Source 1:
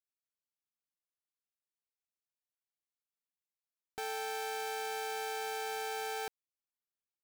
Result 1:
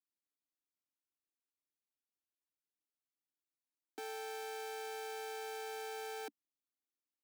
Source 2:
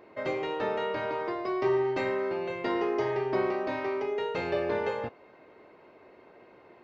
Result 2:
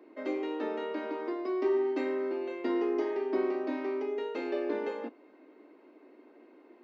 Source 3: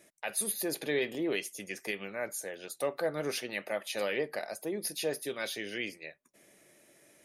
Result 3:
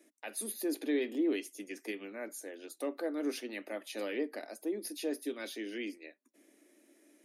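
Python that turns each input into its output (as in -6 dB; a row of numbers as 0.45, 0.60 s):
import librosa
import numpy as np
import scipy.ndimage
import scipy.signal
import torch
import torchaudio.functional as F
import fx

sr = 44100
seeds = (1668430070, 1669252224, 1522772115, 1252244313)

y = scipy.signal.sosfilt(scipy.signal.cheby1(5, 1.0, 220.0, 'highpass', fs=sr, output='sos'), x)
y = fx.peak_eq(y, sr, hz=290.0, db=15.0, octaves=0.62)
y = y * librosa.db_to_amplitude(-7.0)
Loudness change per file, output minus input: -6.0, -2.5, -3.0 LU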